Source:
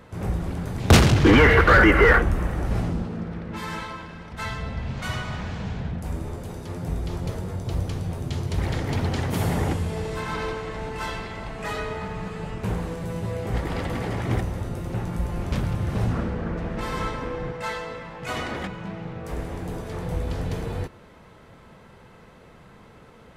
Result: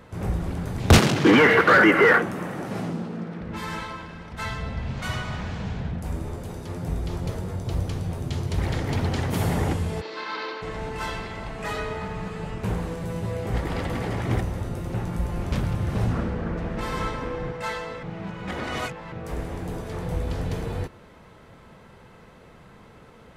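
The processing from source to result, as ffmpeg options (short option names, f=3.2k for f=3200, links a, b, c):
-filter_complex "[0:a]asettb=1/sr,asplit=3[a][b][c];[a]atrim=end=0.984[d];[b]atrim=start=0.98:end=3.41,asetpts=PTS-STARTPTS,afade=t=in:d=0.004:c=qsin,afade=t=out:st=2.426:d=0.004:c=qsin,highpass=f=150:w=0.5412,highpass=f=150:w=1.3066[e];[c]atrim=start=3.406[f];[d][e]acrossfade=d=0.004:c1=hsin:c2=qsin[g];[g][f]acrossfade=d=0.004:c1=qsin:c2=hsin,asplit=3[h][i][j];[h]afade=t=out:st=10:d=0.02[k];[i]highpass=f=310:w=0.5412,highpass=f=310:w=1.3066,equalizer=f=430:t=q:w=4:g=-5,equalizer=f=710:t=q:w=4:g=-7,equalizer=f=4.4k:t=q:w=4:g=8,lowpass=f=5k:w=0.5412,lowpass=f=5k:w=1.3066,afade=t=in:st=10:d=0.02,afade=t=out:st=10.61:d=0.02[l];[j]afade=t=in:st=10.61:d=0.02[m];[k][l][m]amix=inputs=3:normalize=0,asplit=3[n][o][p];[n]atrim=end=18.032[q];[o]atrim=start=18.028:end=19.122,asetpts=PTS-STARTPTS,areverse[r];[p]atrim=start=19.118[s];[q][r]acrossfade=d=0.004:c1=hsin:c2=hsin[t];[t][s]acrossfade=d=0.004:c1=hsin:c2=hsin"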